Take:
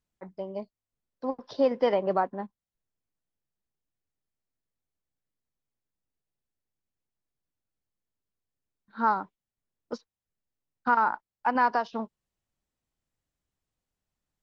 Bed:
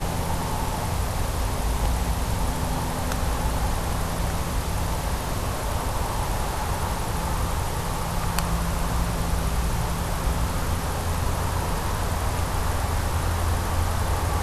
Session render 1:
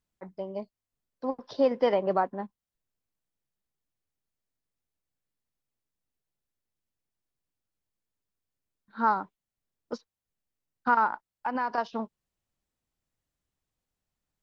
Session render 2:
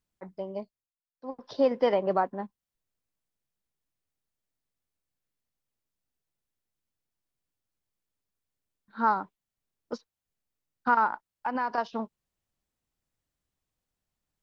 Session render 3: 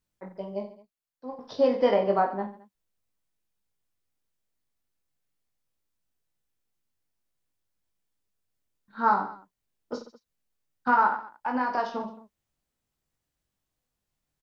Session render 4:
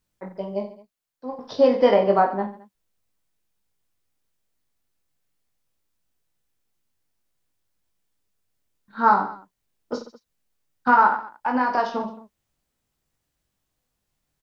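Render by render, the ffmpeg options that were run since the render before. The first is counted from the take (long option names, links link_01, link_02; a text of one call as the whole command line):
ffmpeg -i in.wav -filter_complex "[0:a]asettb=1/sr,asplit=3[link_01][link_02][link_03];[link_01]atrim=end=11.064[link_04];[link_02]atrim=start=11.06:end=11.78,asetpts=PTS-STARTPTS,afade=type=in:duration=0.004:curve=qsin,afade=type=out:start_time=0.716:duration=0.004:curve=qsin,acompressor=threshold=-26dB:ratio=4:attack=3.2:release=140:knee=1:detection=peak[link_05];[link_03]atrim=start=11.776[link_06];[link_04][link_05]acrossfade=duration=0.004:curve1=hsin:curve2=qsin[link_07];[link_07][link_06]acrossfade=duration=0.004:curve1=qsin:curve2=hsin" out.wav
ffmpeg -i in.wav -filter_complex "[0:a]asplit=3[link_01][link_02][link_03];[link_01]atrim=end=0.92,asetpts=PTS-STARTPTS,afade=type=out:start_time=0.57:duration=0.35:silence=0.0668344[link_04];[link_02]atrim=start=0.92:end=1.15,asetpts=PTS-STARTPTS,volume=-23.5dB[link_05];[link_03]atrim=start=1.15,asetpts=PTS-STARTPTS,afade=type=in:duration=0.35:silence=0.0668344[link_06];[link_04][link_05][link_06]concat=n=3:v=0:a=1" out.wav
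ffmpeg -i in.wav -af "aecho=1:1:20|48|87.2|142.1|218.9:0.631|0.398|0.251|0.158|0.1" out.wav
ffmpeg -i in.wav -af "volume=5.5dB" out.wav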